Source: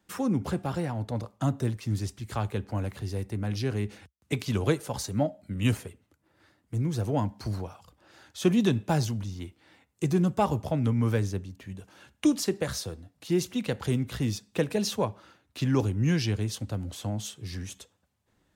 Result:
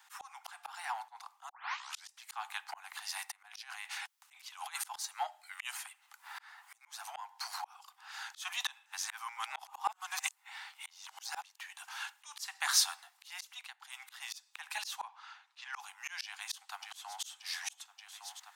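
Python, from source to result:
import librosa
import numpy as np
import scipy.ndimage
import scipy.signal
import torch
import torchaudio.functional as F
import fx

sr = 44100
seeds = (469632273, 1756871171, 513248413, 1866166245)

y = fx.over_compress(x, sr, threshold_db=-30.0, ratio=-0.5, at=(3.3, 5.05))
y = fx.band_squash(y, sr, depth_pct=100, at=(5.85, 6.81))
y = fx.lowpass(y, sr, hz=5500.0, slope=12, at=(15.07, 15.72), fade=0.02)
y = fx.echo_throw(y, sr, start_s=16.24, length_s=0.99, ms=580, feedback_pct=75, wet_db=-16.5)
y = fx.edit(y, sr, fx.tape_start(start_s=1.49, length_s=0.6),
    fx.reverse_span(start_s=8.86, length_s=2.58),
    fx.fade_down_up(start_s=13.37, length_s=0.88, db=-23.0, fade_s=0.36), tone=tone)
y = scipy.signal.sosfilt(scipy.signal.butter(16, 770.0, 'highpass', fs=sr, output='sos'), y)
y = fx.auto_swell(y, sr, attack_ms=695.0)
y = y * librosa.db_to_amplitude(13.5)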